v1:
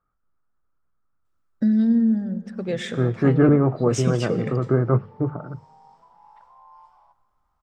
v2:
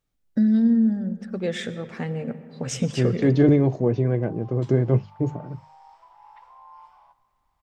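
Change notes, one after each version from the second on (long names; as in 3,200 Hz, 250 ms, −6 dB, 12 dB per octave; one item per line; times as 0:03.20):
first voice: entry −1.25 s
second voice: remove low-pass with resonance 1,300 Hz, resonance Q 9.9
background: add parametric band 2,400 Hz +9 dB 1.5 octaves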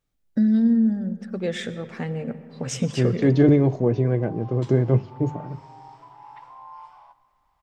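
second voice: send on
background +5.0 dB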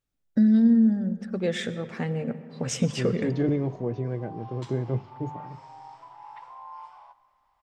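second voice −9.0 dB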